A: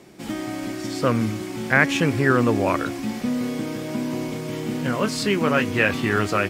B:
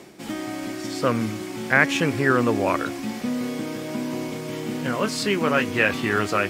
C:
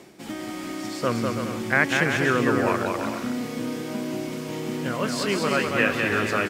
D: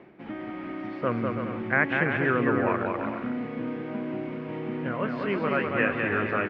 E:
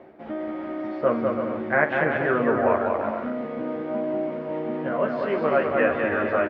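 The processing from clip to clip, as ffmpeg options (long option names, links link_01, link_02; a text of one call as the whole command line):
ffmpeg -i in.wav -af "areverse,acompressor=mode=upward:threshold=-30dB:ratio=2.5,areverse,lowshelf=frequency=160:gain=-7" out.wav
ffmpeg -i in.wav -af "aecho=1:1:200|330|414.5|469.4|505.1:0.631|0.398|0.251|0.158|0.1,volume=-3dB" out.wav
ffmpeg -i in.wav -af "lowpass=frequency=2400:width=0.5412,lowpass=frequency=2400:width=1.3066,volume=-2.5dB" out.wav
ffmpeg -i in.wav -af "equalizer=frequency=160:width_type=o:width=0.67:gain=-6,equalizer=frequency=630:width_type=o:width=0.67:gain=9,equalizer=frequency=2500:width_type=o:width=0.67:gain=-6,aecho=1:1:13|55:0.631|0.282" out.wav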